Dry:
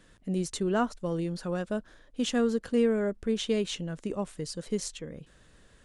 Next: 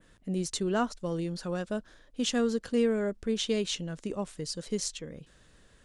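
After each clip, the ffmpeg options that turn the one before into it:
-af "adynamicequalizer=threshold=0.00316:dfrequency=5200:dqfactor=0.81:tfrequency=5200:tqfactor=0.81:attack=5:release=100:ratio=0.375:range=3:mode=boostabove:tftype=bell,volume=-1.5dB"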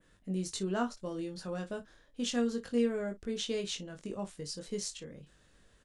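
-af "aecho=1:1:21|55:0.596|0.141,volume=-6dB"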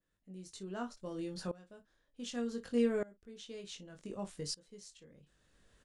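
-af "aeval=exprs='val(0)*pow(10,-22*if(lt(mod(-0.66*n/s,1),2*abs(-0.66)/1000),1-mod(-0.66*n/s,1)/(2*abs(-0.66)/1000),(mod(-0.66*n/s,1)-2*abs(-0.66)/1000)/(1-2*abs(-0.66)/1000))/20)':c=same,volume=2dB"

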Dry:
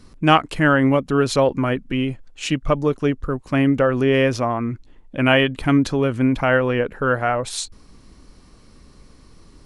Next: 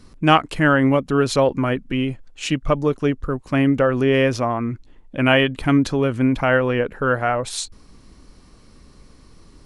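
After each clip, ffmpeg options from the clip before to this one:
-af anull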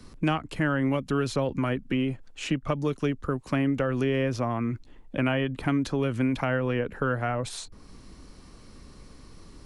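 -filter_complex "[0:a]acrossover=split=84|270|1900[a][b][c][d];[a]acompressor=threshold=-44dB:ratio=4[e];[b]acompressor=threshold=-29dB:ratio=4[f];[c]acompressor=threshold=-29dB:ratio=4[g];[d]acompressor=threshold=-39dB:ratio=4[h];[e][f][g][h]amix=inputs=4:normalize=0"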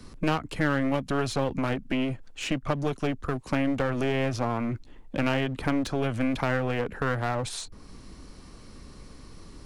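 -af "aeval=exprs='clip(val(0),-1,0.0316)':c=same,volume=2dB"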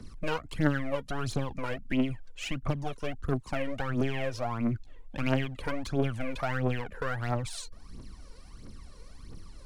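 -af "aphaser=in_gain=1:out_gain=1:delay=2.2:decay=0.71:speed=1.5:type=triangular,volume=-7.5dB"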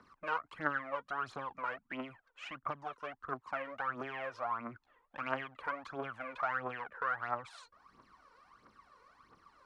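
-af "bandpass=f=1.2k:t=q:w=2.5:csg=0,volume=4dB"

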